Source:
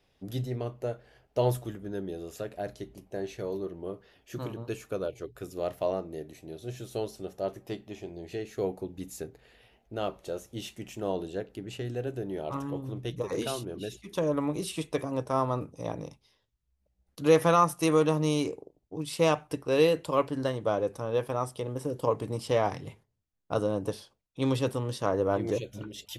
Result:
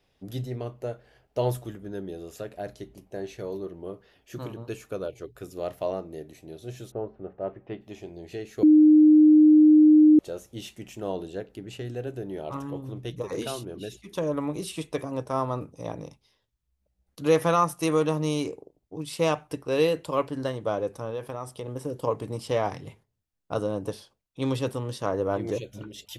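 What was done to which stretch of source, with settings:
0:06.90–0:07.80: low-pass filter 1,400 Hz → 2,900 Hz 24 dB per octave
0:08.63–0:10.19: beep over 306 Hz −11.5 dBFS
0:21.10–0:21.68: downward compressor 2.5 to 1, threshold −31 dBFS

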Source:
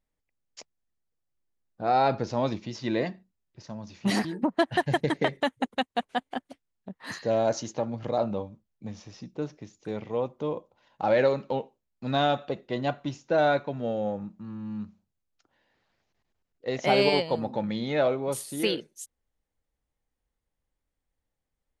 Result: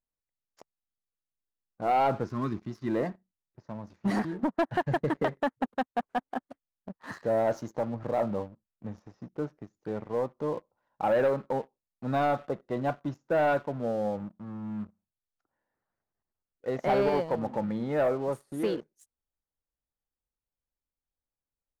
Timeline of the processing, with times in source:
0:02.26–0:02.88: gain on a spectral selection 440–1,000 Hz −17 dB
0:16.98–0:18.54: high-shelf EQ 4,800 Hz −8.5 dB
whole clip: high shelf with overshoot 2,000 Hz −11 dB, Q 1.5; leveller curve on the samples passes 2; level −8.5 dB

